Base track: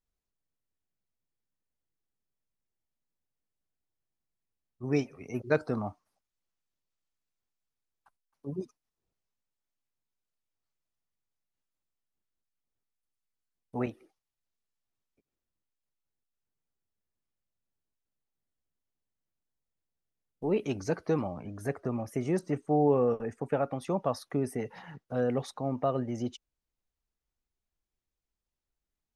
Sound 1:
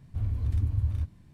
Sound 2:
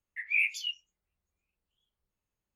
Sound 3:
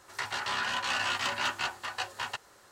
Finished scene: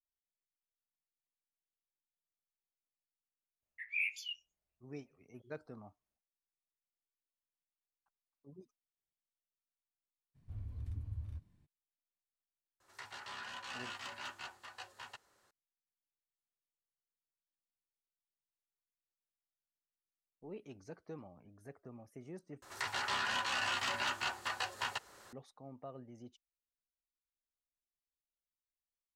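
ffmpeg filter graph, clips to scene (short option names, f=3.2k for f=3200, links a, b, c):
-filter_complex "[3:a]asplit=2[a][b];[0:a]volume=-19.5dB[c];[2:a]equalizer=f=650:w=3.8:g=10[d];[b]alimiter=level_in=1.5dB:limit=-24dB:level=0:latency=1:release=259,volume=-1.5dB[e];[c]asplit=2[f][g];[f]atrim=end=22.624[h];[e]atrim=end=2.71[i];[g]atrim=start=25.326[j];[d]atrim=end=2.55,asetpts=PTS-STARTPTS,volume=-8.5dB,afade=t=in:d=0.004:c=hsin,afade=t=out:st=2.546:d=0.004:c=hsin,adelay=3620[k];[1:a]atrim=end=1.33,asetpts=PTS-STARTPTS,volume=-15.5dB,afade=t=in:d=0.02,afade=t=out:st=1.31:d=0.02,adelay=455994S[l];[a]atrim=end=2.71,asetpts=PTS-STARTPTS,volume=-15dB,afade=t=in:d=0.004:c=hsin,afade=t=out:st=2.706:d=0.004:c=hsin,adelay=12800[m];[h][i]acrossfade=d=0.004:c1=hsin:c2=hsin[n];[n][j]acrossfade=d=0.004:c1=hsin:c2=hsin[o];[o][k][l][m]amix=inputs=4:normalize=0"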